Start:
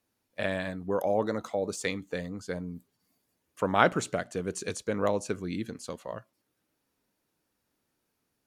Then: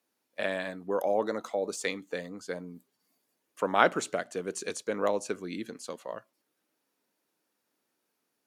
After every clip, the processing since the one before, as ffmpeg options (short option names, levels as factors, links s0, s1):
-af "highpass=260"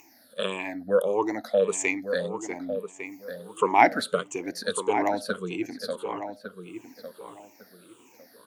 -filter_complex "[0:a]afftfilt=real='re*pow(10,23/40*sin(2*PI*(0.71*log(max(b,1)*sr/1024/100)/log(2)-(-1.6)*(pts-256)/sr)))':imag='im*pow(10,23/40*sin(2*PI*(0.71*log(max(b,1)*sr/1024/100)/log(2)-(-1.6)*(pts-256)/sr)))':win_size=1024:overlap=0.75,acompressor=mode=upward:threshold=0.00794:ratio=2.5,asplit=2[s0][s1];[s1]adelay=1153,lowpass=f=2100:p=1,volume=0.355,asplit=2[s2][s3];[s3]adelay=1153,lowpass=f=2100:p=1,volume=0.24,asplit=2[s4][s5];[s5]adelay=1153,lowpass=f=2100:p=1,volume=0.24[s6];[s0][s2][s4][s6]amix=inputs=4:normalize=0"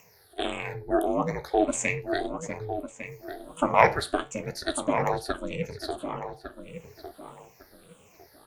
-af "aeval=exprs='val(0)*sin(2*PI*160*n/s)':c=same,flanger=delay=9.2:depth=9:regen=-65:speed=0.39:shape=triangular,volume=2"